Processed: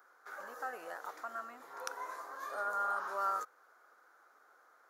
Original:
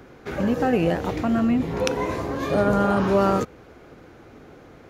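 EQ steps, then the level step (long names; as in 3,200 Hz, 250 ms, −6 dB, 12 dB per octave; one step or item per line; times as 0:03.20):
high-pass filter 540 Hz 12 dB per octave
first difference
high shelf with overshoot 1,900 Hz −11.5 dB, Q 3
+1.0 dB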